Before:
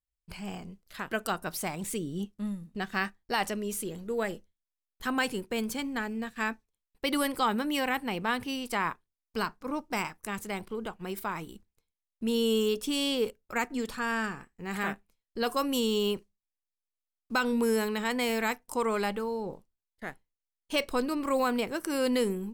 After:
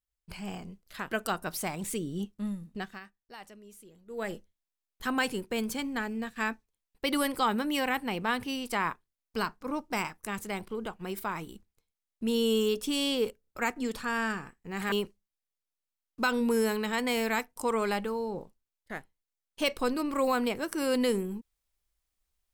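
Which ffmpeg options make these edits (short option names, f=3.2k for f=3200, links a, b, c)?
-filter_complex "[0:a]asplit=6[a][b][c][d][e][f];[a]atrim=end=3,asetpts=PTS-STARTPTS,afade=t=out:st=2.72:d=0.28:silence=0.125893[g];[b]atrim=start=3:end=4.06,asetpts=PTS-STARTPTS,volume=-18dB[h];[c]atrim=start=4.06:end=13.442,asetpts=PTS-STARTPTS,afade=t=in:d=0.28:silence=0.125893[i];[d]atrim=start=13.408:end=13.442[j];[e]atrim=start=13.408:end=14.862[k];[f]atrim=start=16.038[l];[g][h][i]concat=n=3:v=0:a=1[m];[m][j]acrossfade=d=0.004:c1=hsin:c2=hsin[n];[n][k]acrossfade=d=0.004:c1=hsin:c2=hsin[o];[o][l]acrossfade=d=0.004:c1=hsin:c2=hsin"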